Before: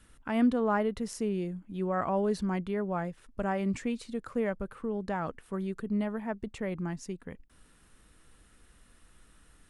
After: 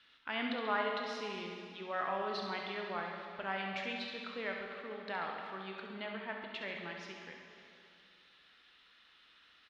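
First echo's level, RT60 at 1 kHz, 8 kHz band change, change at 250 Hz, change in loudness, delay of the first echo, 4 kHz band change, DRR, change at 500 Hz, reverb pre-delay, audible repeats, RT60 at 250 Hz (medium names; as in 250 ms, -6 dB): -8.5 dB, 2.4 s, under -10 dB, -15.0 dB, -7.0 dB, 68 ms, +7.0 dB, 0.5 dB, -8.5 dB, 8 ms, 1, 2.5 s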